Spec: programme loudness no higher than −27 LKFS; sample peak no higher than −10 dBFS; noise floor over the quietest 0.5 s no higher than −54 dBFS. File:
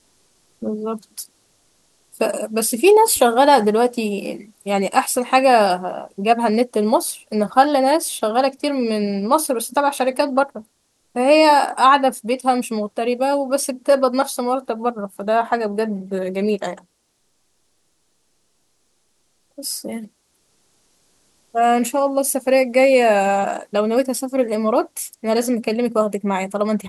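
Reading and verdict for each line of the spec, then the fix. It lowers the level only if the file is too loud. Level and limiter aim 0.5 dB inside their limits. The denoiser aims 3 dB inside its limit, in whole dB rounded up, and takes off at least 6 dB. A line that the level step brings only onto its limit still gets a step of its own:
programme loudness −18.5 LKFS: out of spec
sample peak −1.5 dBFS: out of spec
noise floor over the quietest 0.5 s −66 dBFS: in spec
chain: level −9 dB

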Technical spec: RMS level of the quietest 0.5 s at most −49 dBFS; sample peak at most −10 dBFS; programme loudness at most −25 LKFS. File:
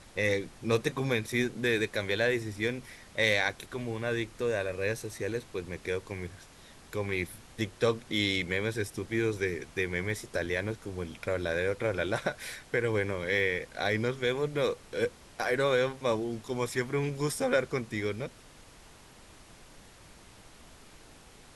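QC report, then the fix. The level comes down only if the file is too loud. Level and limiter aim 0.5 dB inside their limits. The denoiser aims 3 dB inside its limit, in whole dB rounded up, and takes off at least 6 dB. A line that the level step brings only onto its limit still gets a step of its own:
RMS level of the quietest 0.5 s −54 dBFS: in spec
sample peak −13.5 dBFS: in spec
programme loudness −31.0 LKFS: in spec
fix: no processing needed

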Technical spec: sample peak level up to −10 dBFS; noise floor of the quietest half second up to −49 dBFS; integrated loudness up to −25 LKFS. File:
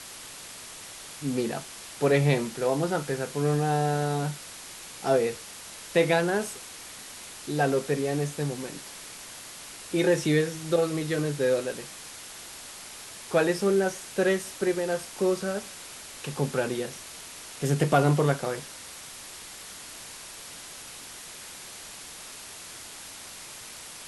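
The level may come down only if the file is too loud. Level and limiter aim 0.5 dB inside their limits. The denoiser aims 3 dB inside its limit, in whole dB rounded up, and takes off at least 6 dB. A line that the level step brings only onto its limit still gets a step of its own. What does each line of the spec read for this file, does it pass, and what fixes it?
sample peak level −8.0 dBFS: out of spec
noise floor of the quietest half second −43 dBFS: out of spec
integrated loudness −27.0 LKFS: in spec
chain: broadband denoise 9 dB, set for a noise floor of −43 dBFS
brickwall limiter −10.5 dBFS

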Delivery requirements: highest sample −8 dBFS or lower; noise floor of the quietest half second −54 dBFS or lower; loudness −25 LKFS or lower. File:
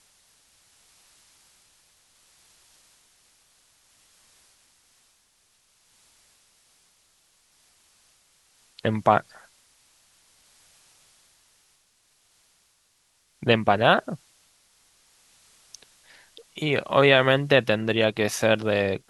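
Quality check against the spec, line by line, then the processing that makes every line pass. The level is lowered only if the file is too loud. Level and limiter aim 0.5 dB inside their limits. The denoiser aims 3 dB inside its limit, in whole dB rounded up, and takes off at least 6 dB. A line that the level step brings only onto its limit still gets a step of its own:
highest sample −3.0 dBFS: out of spec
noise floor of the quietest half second −66 dBFS: in spec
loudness −22.0 LKFS: out of spec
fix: level −3.5 dB
brickwall limiter −8.5 dBFS

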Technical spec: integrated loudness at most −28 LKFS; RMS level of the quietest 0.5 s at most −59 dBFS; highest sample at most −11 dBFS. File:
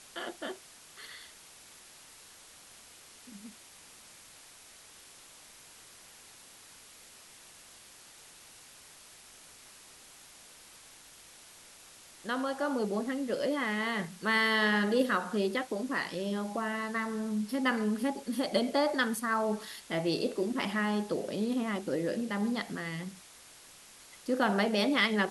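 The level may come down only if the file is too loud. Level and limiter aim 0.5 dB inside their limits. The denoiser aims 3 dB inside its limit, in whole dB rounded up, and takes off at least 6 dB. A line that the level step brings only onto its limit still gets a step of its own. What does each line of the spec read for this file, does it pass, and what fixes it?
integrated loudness −31.5 LKFS: in spec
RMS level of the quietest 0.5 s −54 dBFS: out of spec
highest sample −14.0 dBFS: in spec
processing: broadband denoise 8 dB, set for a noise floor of −54 dBFS

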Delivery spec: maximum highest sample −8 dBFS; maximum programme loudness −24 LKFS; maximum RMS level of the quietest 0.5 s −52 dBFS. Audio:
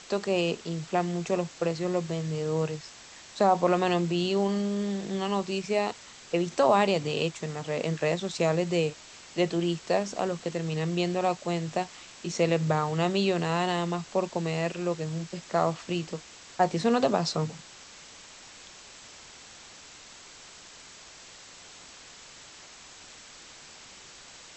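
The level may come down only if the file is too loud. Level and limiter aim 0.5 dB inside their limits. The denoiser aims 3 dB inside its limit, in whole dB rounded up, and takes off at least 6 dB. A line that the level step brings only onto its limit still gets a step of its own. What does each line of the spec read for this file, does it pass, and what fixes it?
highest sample −10.0 dBFS: in spec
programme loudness −28.5 LKFS: in spec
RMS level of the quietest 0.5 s −49 dBFS: out of spec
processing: broadband denoise 6 dB, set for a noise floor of −49 dBFS

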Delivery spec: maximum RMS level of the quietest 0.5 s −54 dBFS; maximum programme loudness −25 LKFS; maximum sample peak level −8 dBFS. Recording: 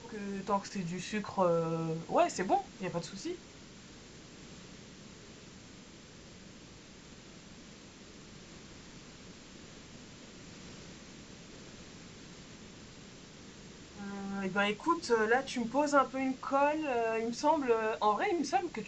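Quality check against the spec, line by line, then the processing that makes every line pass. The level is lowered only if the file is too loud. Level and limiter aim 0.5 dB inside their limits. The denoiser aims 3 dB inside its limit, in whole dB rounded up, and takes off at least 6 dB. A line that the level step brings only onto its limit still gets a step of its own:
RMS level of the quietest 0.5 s −53 dBFS: out of spec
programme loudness −32.5 LKFS: in spec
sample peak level −14.0 dBFS: in spec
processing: broadband denoise 6 dB, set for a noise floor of −53 dBFS

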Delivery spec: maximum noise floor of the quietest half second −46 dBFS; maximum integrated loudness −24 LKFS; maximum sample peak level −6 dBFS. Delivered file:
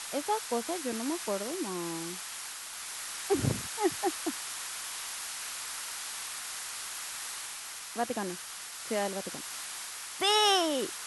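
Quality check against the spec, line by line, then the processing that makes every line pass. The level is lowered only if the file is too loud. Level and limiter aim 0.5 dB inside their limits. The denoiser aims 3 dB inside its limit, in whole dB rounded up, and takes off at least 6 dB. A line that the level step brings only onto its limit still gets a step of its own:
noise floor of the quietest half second −43 dBFS: out of spec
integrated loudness −33.0 LKFS: in spec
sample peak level −14.0 dBFS: in spec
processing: broadband denoise 6 dB, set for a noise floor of −43 dBFS

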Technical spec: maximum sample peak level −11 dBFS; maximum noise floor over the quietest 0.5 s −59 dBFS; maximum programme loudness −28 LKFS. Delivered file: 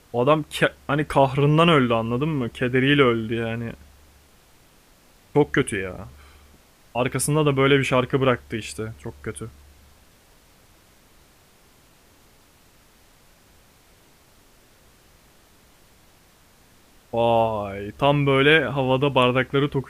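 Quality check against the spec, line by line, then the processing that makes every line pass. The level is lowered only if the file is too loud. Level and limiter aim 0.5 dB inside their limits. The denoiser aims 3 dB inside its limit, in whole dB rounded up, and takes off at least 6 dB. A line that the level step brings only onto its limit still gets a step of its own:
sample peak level −3.5 dBFS: out of spec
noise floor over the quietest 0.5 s −55 dBFS: out of spec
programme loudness −21.0 LKFS: out of spec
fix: level −7.5 dB
brickwall limiter −11.5 dBFS

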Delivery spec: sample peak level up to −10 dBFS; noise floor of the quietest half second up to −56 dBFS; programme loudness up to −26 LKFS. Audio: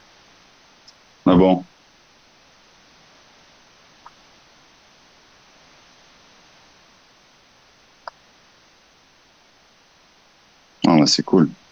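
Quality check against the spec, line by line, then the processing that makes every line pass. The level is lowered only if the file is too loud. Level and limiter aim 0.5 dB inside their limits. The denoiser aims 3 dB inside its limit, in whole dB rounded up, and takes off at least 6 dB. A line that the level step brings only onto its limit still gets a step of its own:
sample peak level −4.5 dBFS: out of spec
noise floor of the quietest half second −55 dBFS: out of spec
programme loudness −17.0 LKFS: out of spec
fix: level −9.5 dB

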